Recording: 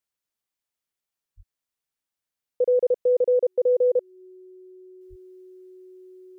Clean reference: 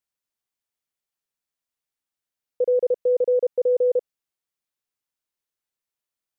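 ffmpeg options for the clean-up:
-filter_complex "[0:a]bandreject=f=370:w=30,asplit=3[a][b][c];[a]afade=t=out:st=1.36:d=0.02[d];[b]highpass=f=140:w=0.5412,highpass=f=140:w=1.3066,afade=t=in:st=1.36:d=0.02,afade=t=out:st=1.48:d=0.02[e];[c]afade=t=in:st=1.48:d=0.02[f];[d][e][f]amix=inputs=3:normalize=0,asplit=3[g][h][i];[g]afade=t=out:st=5.09:d=0.02[j];[h]highpass=f=140:w=0.5412,highpass=f=140:w=1.3066,afade=t=in:st=5.09:d=0.02,afade=t=out:st=5.21:d=0.02[k];[i]afade=t=in:st=5.21:d=0.02[l];[j][k][l]amix=inputs=3:normalize=0,asetnsamples=n=441:p=0,asendcmd='5.01 volume volume -7.5dB',volume=0dB"

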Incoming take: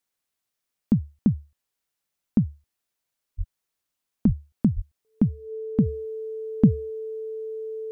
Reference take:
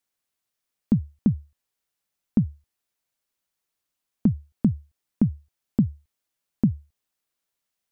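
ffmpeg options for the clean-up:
-filter_complex "[0:a]bandreject=f=440:w=30,asplit=3[a][b][c];[a]afade=t=out:st=3.37:d=0.02[d];[b]highpass=f=140:w=0.5412,highpass=f=140:w=1.3066,afade=t=in:st=3.37:d=0.02,afade=t=out:st=3.49:d=0.02[e];[c]afade=t=in:st=3.49:d=0.02[f];[d][e][f]amix=inputs=3:normalize=0,asplit=3[g][h][i];[g]afade=t=out:st=4.26:d=0.02[j];[h]highpass=f=140:w=0.5412,highpass=f=140:w=1.3066,afade=t=in:st=4.26:d=0.02,afade=t=out:st=4.38:d=0.02[k];[i]afade=t=in:st=4.38:d=0.02[l];[j][k][l]amix=inputs=3:normalize=0,asplit=3[m][n][o];[m]afade=t=out:st=4.75:d=0.02[p];[n]highpass=f=140:w=0.5412,highpass=f=140:w=1.3066,afade=t=in:st=4.75:d=0.02,afade=t=out:st=4.87:d=0.02[q];[o]afade=t=in:st=4.87:d=0.02[r];[p][q][r]amix=inputs=3:normalize=0,asetnsamples=n=441:p=0,asendcmd='5.86 volume volume -4dB',volume=0dB"

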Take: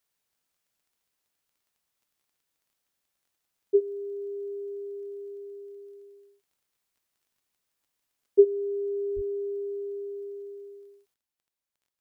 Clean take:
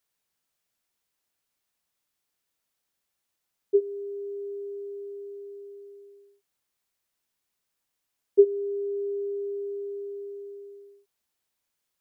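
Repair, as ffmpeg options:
-filter_complex "[0:a]adeclick=t=4,asplit=3[a][b][c];[a]afade=t=out:st=9.15:d=0.02[d];[b]highpass=f=140:w=0.5412,highpass=f=140:w=1.3066,afade=t=in:st=9.15:d=0.02,afade=t=out:st=9.27:d=0.02[e];[c]afade=t=in:st=9.27:d=0.02[f];[d][e][f]amix=inputs=3:normalize=0,asetnsamples=n=441:p=0,asendcmd='11.14 volume volume 9.5dB',volume=0dB"

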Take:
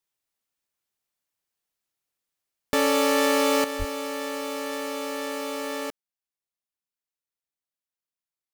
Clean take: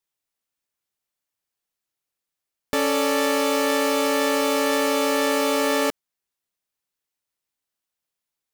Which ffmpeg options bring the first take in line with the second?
-filter_complex "[0:a]asplit=3[a][b][c];[a]afade=t=out:st=3.78:d=0.02[d];[b]highpass=f=140:w=0.5412,highpass=f=140:w=1.3066,afade=t=in:st=3.78:d=0.02,afade=t=out:st=3.9:d=0.02[e];[c]afade=t=in:st=3.9:d=0.02[f];[d][e][f]amix=inputs=3:normalize=0,asetnsamples=n=441:p=0,asendcmd='3.64 volume volume 10dB',volume=0dB"

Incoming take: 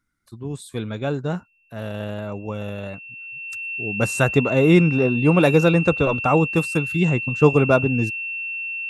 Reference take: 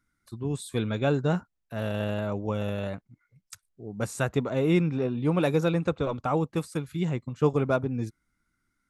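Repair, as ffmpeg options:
-af "bandreject=f=2.7k:w=30,asetnsamples=n=441:p=0,asendcmd='3.62 volume volume -8.5dB',volume=0dB"

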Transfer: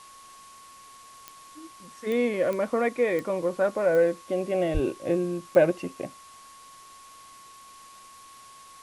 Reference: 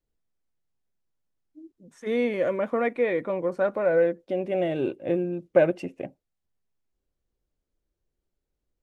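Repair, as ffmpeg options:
-filter_complex "[0:a]adeclick=t=4,bandreject=f=1.1k:w=30,asplit=3[a][b][c];[a]afade=t=out:st=4.73:d=0.02[d];[b]highpass=f=140:w=0.5412,highpass=f=140:w=1.3066,afade=t=in:st=4.73:d=0.02,afade=t=out:st=4.85:d=0.02[e];[c]afade=t=in:st=4.85:d=0.02[f];[d][e][f]amix=inputs=3:normalize=0,afftdn=nr=30:nf=-49"

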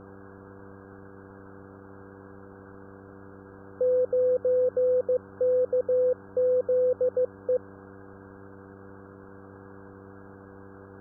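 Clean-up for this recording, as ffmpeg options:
-af "bandreject=f=97.7:t=h:w=4,bandreject=f=195.4:t=h:w=4,bandreject=f=293.1:t=h:w=4,bandreject=f=390.8:t=h:w=4,bandreject=f=488.5:t=h:w=4,afwtdn=0.0079"

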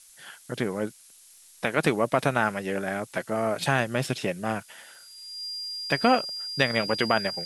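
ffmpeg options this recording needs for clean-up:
-af "adeclick=t=4,bandreject=f=4.8k:w=30,afftdn=nr=18:nf=-53"

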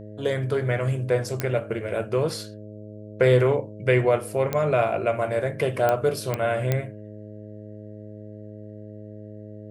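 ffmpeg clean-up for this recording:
-af "adeclick=t=4,bandreject=f=105.5:t=h:w=4,bandreject=f=211:t=h:w=4,bandreject=f=316.5:t=h:w=4,bandreject=f=422:t=h:w=4,bandreject=f=527.5:t=h:w=4,bandreject=f=633:t=h:w=4"

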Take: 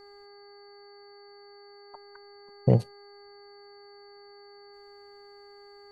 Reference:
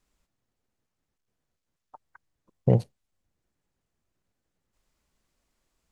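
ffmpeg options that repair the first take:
-af "bandreject=f=405.7:t=h:w=4,bandreject=f=811.4:t=h:w=4,bandreject=f=1.2171k:t=h:w=4,bandreject=f=1.6228k:t=h:w=4,bandreject=f=2.0285k:t=h:w=4,bandreject=f=4.5k:w=30,agate=range=-21dB:threshold=-43dB"

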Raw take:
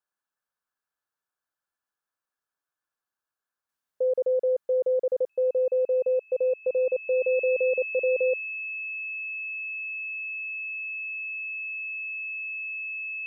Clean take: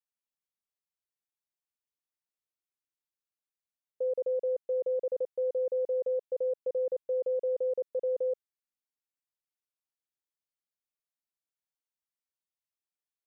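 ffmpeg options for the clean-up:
-af "bandreject=f=2.6k:w=30,agate=range=-21dB:threshold=-83dB,asetnsamples=n=441:p=0,asendcmd='3.69 volume volume -6dB',volume=0dB"

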